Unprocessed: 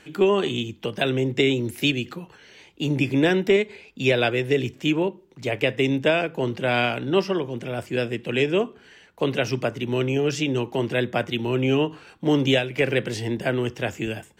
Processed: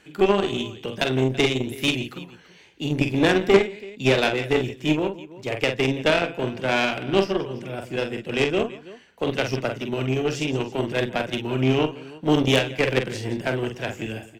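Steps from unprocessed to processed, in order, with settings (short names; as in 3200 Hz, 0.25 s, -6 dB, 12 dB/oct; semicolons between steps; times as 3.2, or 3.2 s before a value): tapped delay 46/169/331 ms -5/-15.5/-16 dB; added harmonics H 4 -18 dB, 6 -11 dB, 7 -25 dB, 8 -19 dB, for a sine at -4.5 dBFS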